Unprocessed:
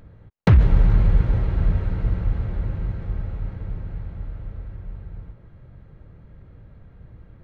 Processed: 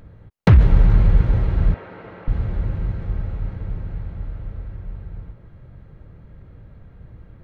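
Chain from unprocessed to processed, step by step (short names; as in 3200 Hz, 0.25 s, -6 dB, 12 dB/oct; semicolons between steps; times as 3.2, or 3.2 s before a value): 1.74–2.28 BPF 410–2900 Hz; gain +2.5 dB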